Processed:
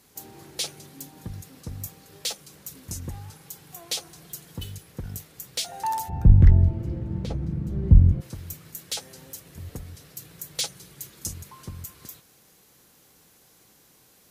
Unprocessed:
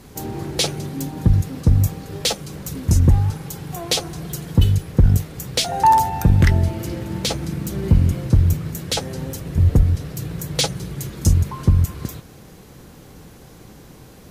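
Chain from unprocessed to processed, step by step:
spectral tilt +2.5 dB per octave, from 0:06.08 −4 dB per octave, from 0:08.20 +3 dB per octave
level −14 dB

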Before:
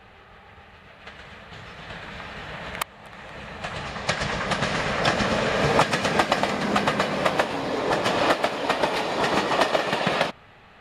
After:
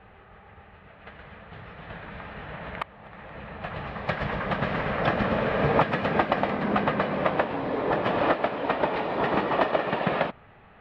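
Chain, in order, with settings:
high-frequency loss of the air 480 metres

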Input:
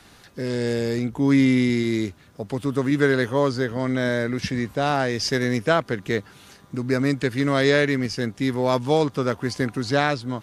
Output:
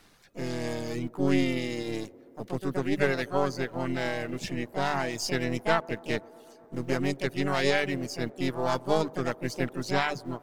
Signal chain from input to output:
gain on one half-wave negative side −7 dB
mains-hum notches 50/100/150 Hz
reverb reduction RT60 1 s
in parallel at −10.5 dB: centre clipping without the shift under −37 dBFS
on the sum: pitch-shifted copies added +5 semitones −5 dB
on a send: delay with a band-pass on its return 125 ms, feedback 83%, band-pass 500 Hz, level −22.5 dB
on the sum: level −7 dB

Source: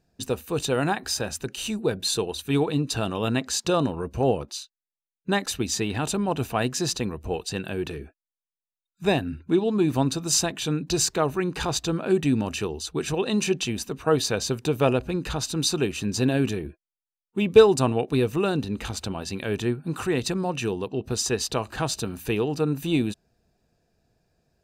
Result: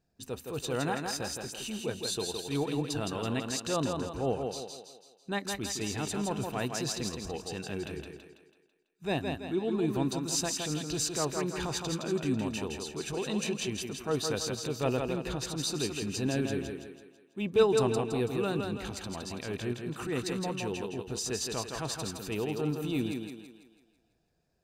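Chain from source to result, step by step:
transient designer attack −6 dB, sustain −2 dB
feedback echo with a high-pass in the loop 165 ms, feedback 47%, high-pass 160 Hz, level −4 dB
level −7 dB

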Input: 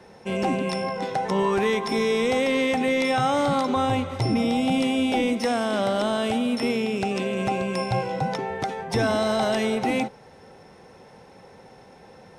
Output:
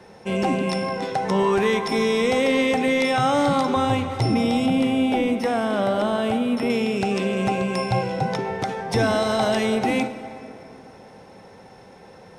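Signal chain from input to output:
0:04.66–0:06.70: parametric band 6,200 Hz −8.5 dB 2 octaves
dense smooth reverb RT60 3.2 s, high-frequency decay 0.55×, DRR 10.5 dB
level +2 dB

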